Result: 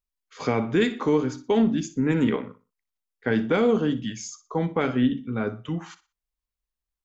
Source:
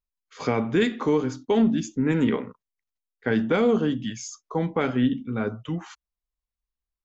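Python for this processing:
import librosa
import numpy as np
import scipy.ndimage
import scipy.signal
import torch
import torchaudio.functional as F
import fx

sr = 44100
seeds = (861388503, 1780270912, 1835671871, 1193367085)

y = fx.echo_feedback(x, sr, ms=60, feedback_pct=28, wet_db=-15.5)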